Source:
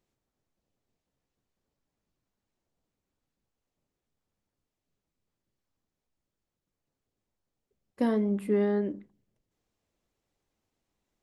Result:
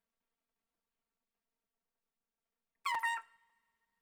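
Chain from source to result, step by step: rotating-head pitch shifter +8.5 st; treble shelf 4.5 kHz +5 dB; wide varispeed 2.8×; two-slope reverb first 0.39 s, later 2 s, from -20 dB, DRR 16.5 dB; crackling interface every 0.55 s, samples 256, repeat, from 0.74 s; trim -7.5 dB

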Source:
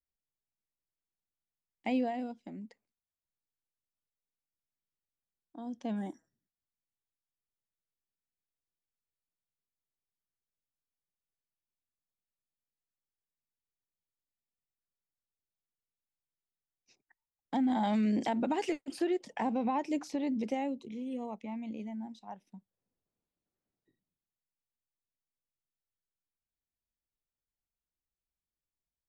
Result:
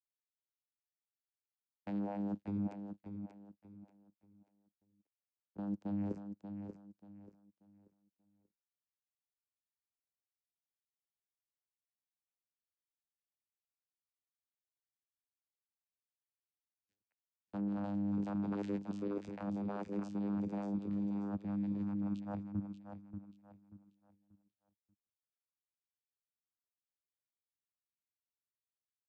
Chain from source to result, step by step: gate -52 dBFS, range -17 dB; waveshaping leveller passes 2; reverse; compression 12:1, threshold -42 dBFS, peak gain reduction 18 dB; reverse; vocoder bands 8, saw 101 Hz; on a send: feedback delay 585 ms, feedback 30%, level -8 dB; on the sum: trim +7 dB

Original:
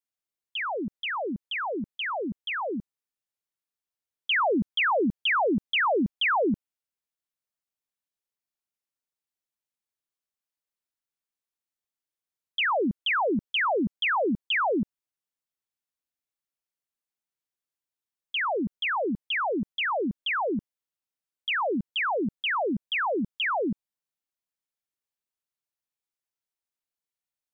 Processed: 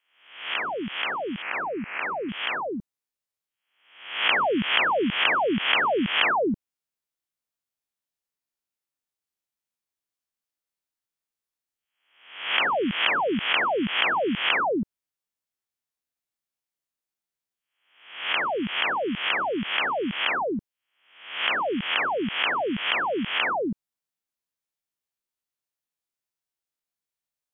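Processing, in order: reverse spectral sustain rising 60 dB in 0.61 s; 1.42–2.29 s: steep low-pass 2.6 kHz 72 dB/octave; trim -1 dB

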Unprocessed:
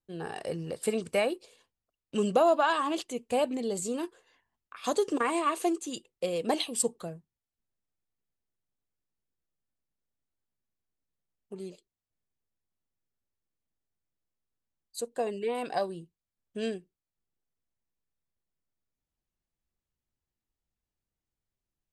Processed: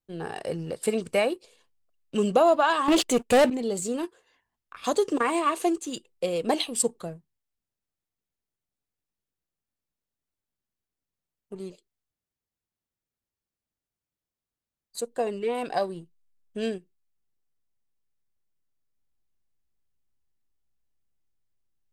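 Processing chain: 2.88–3.50 s: waveshaping leveller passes 3; in parallel at -6 dB: hysteresis with a dead band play -38 dBFS

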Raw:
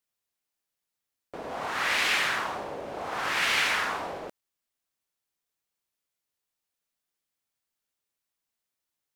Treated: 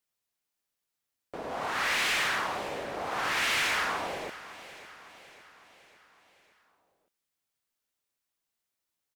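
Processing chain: hard clipper -24.5 dBFS, distortion -12 dB; on a send: feedback delay 557 ms, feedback 53%, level -16 dB

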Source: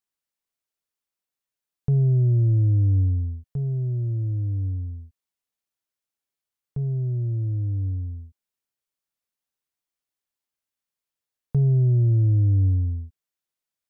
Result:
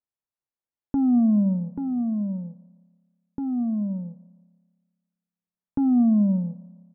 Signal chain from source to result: dynamic bell 230 Hz, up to -5 dB, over -36 dBFS, Q 1.1; Bessel low-pass 540 Hz, order 2; doubling 17 ms -12 dB; feedback delay 296 ms, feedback 43%, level -24 dB; spring tank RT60 3.2 s, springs 57 ms, DRR 19 dB; speed mistake 7.5 ips tape played at 15 ips

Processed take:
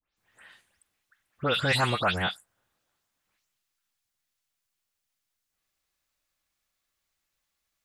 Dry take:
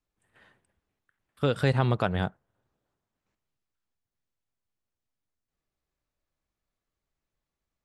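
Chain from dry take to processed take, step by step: delay that grows with frequency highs late, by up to 169 ms; tilt shelf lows -8.5 dB; trim +3.5 dB

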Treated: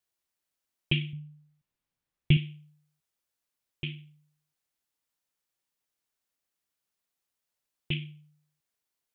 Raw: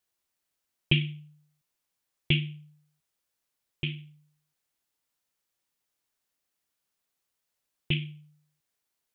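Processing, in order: 1.13–2.37 s: tone controls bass +10 dB, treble -7 dB; trim -3.5 dB

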